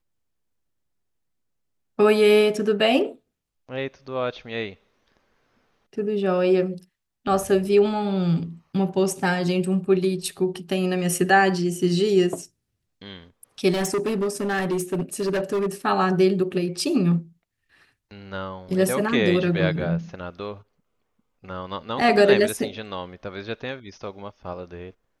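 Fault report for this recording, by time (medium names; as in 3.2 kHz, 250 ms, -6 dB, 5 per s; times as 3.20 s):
13.72–15.67 s: clipped -20 dBFS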